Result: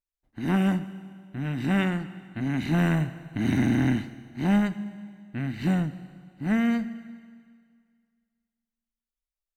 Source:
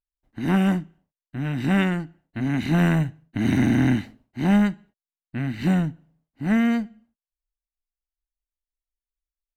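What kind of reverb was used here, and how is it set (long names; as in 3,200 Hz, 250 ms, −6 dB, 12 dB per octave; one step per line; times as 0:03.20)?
four-comb reverb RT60 2 s, combs from 26 ms, DRR 13 dB
level −3.5 dB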